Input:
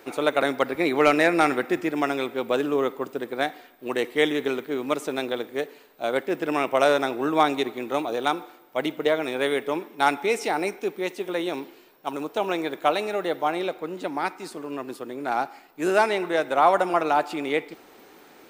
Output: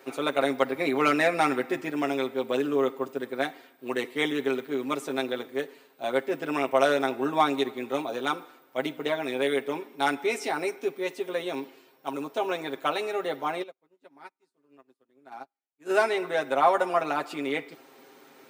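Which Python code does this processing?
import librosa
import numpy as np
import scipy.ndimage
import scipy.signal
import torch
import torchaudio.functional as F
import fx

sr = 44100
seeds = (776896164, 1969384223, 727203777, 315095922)

y = scipy.signal.sosfilt(scipy.signal.butter(2, 120.0, 'highpass', fs=sr, output='sos'), x)
y = y + 0.79 * np.pad(y, (int(7.5 * sr / 1000.0), 0))[:len(y)]
y = fx.upward_expand(y, sr, threshold_db=-42.0, expansion=2.5, at=(13.62, 15.89), fade=0.02)
y = y * 10.0 ** (-5.0 / 20.0)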